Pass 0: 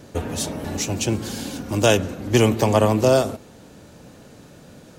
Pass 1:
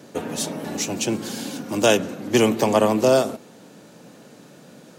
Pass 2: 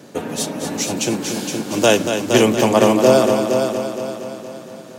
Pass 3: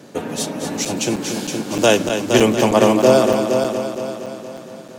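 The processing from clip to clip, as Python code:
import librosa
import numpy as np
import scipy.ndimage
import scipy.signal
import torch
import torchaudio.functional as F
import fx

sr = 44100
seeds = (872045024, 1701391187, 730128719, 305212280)

y1 = scipy.signal.sosfilt(scipy.signal.butter(4, 150.0, 'highpass', fs=sr, output='sos'), x)
y2 = fx.echo_heads(y1, sr, ms=233, heads='first and second', feedback_pct=52, wet_db=-8)
y2 = y2 * 10.0 ** (3.0 / 20.0)
y3 = fx.high_shelf(y2, sr, hz=9900.0, db=-3.5)
y3 = fx.buffer_crackle(y3, sr, first_s=0.85, period_s=0.31, block=256, kind='zero')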